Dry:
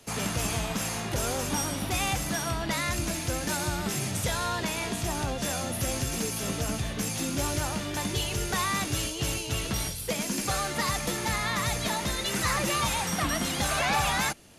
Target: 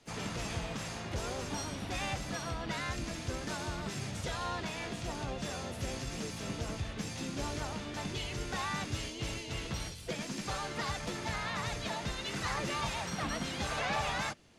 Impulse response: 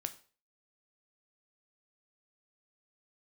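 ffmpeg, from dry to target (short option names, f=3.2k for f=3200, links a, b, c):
-filter_complex "[0:a]lowpass=6.3k,asplit=3[a][b][c];[b]asetrate=33038,aresample=44100,atempo=1.33484,volume=-5dB[d];[c]asetrate=58866,aresample=44100,atempo=0.749154,volume=-17dB[e];[a][d][e]amix=inputs=3:normalize=0,volume=-8.5dB"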